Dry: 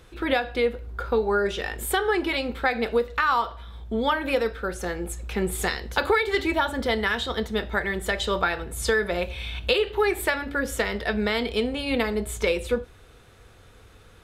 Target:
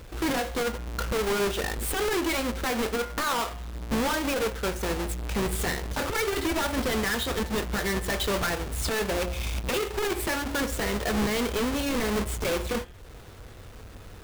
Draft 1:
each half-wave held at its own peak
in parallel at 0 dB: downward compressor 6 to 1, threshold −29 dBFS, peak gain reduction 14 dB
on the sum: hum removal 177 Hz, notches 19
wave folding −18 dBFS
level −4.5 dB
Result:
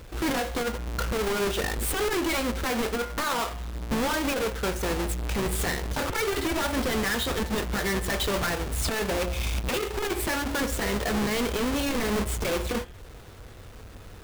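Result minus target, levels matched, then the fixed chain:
downward compressor: peak gain reduction −7.5 dB
each half-wave held at its own peak
in parallel at 0 dB: downward compressor 6 to 1, threshold −38 dBFS, peak gain reduction 21.5 dB
on the sum: hum removal 177 Hz, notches 19
wave folding −18 dBFS
level −4.5 dB

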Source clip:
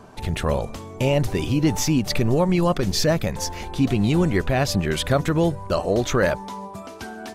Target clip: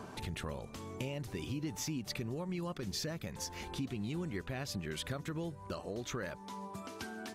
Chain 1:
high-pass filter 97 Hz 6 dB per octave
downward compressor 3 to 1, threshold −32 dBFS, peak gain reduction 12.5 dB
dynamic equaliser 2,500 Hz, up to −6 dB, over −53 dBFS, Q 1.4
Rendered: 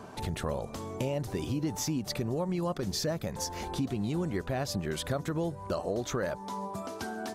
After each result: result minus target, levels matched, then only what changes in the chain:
downward compressor: peak gain reduction −6.5 dB; 2,000 Hz band −3.5 dB
change: downward compressor 3 to 1, threshold −41.5 dBFS, peak gain reduction 19 dB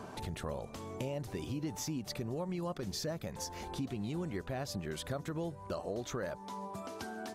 2,000 Hz band −3.0 dB
change: dynamic equaliser 660 Hz, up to −6 dB, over −53 dBFS, Q 1.4

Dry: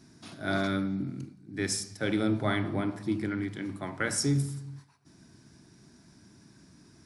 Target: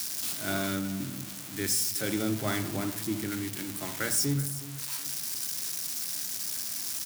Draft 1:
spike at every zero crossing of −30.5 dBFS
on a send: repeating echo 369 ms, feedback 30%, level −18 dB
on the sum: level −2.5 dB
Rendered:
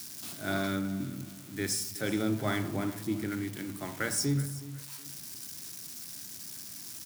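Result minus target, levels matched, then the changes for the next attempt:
spike at every zero crossing: distortion −9 dB
change: spike at every zero crossing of −21 dBFS

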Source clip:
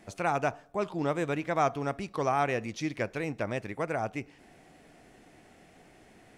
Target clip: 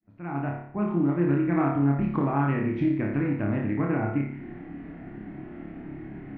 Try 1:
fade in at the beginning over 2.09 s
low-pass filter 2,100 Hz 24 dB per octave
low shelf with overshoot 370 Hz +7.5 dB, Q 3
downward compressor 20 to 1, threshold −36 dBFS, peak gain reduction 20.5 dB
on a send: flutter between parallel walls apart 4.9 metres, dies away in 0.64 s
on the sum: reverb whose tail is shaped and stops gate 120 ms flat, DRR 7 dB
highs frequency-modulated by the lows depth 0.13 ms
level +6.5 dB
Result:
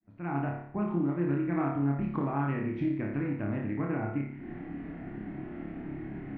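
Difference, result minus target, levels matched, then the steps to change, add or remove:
downward compressor: peak gain reduction +5.5 dB
change: downward compressor 20 to 1, threshold −30 dBFS, peak gain reduction 15 dB

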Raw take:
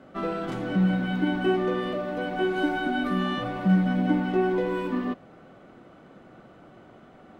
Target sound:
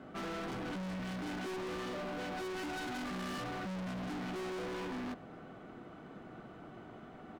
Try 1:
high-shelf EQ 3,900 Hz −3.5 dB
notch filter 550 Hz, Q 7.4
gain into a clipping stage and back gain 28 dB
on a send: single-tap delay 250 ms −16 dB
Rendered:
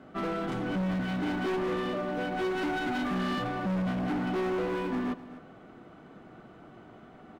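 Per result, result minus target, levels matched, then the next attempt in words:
echo-to-direct +10.5 dB; gain into a clipping stage and back: distortion −4 dB
high-shelf EQ 3,900 Hz −3.5 dB
notch filter 550 Hz, Q 7.4
gain into a clipping stage and back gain 28 dB
on a send: single-tap delay 250 ms −26.5 dB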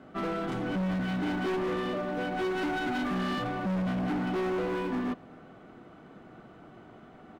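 gain into a clipping stage and back: distortion −4 dB
high-shelf EQ 3,900 Hz −3.5 dB
notch filter 550 Hz, Q 7.4
gain into a clipping stage and back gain 39 dB
on a send: single-tap delay 250 ms −26.5 dB

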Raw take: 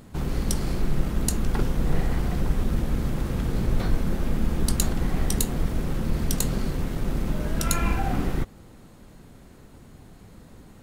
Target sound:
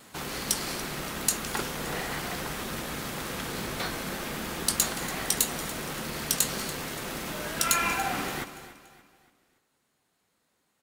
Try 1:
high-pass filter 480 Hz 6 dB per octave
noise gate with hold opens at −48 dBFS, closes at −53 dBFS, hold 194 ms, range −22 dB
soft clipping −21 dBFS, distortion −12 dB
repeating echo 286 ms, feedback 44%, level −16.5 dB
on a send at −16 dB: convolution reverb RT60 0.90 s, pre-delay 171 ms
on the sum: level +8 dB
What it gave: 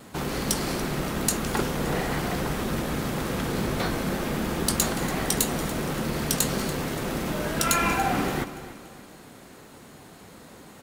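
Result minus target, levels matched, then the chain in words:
500 Hz band +4.5 dB
high-pass filter 1,600 Hz 6 dB per octave
noise gate with hold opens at −48 dBFS, closes at −53 dBFS, hold 194 ms, range −22 dB
soft clipping −21 dBFS, distortion −9 dB
repeating echo 286 ms, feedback 44%, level −16.5 dB
on a send at −16 dB: convolution reverb RT60 0.90 s, pre-delay 171 ms
on the sum: level +8 dB

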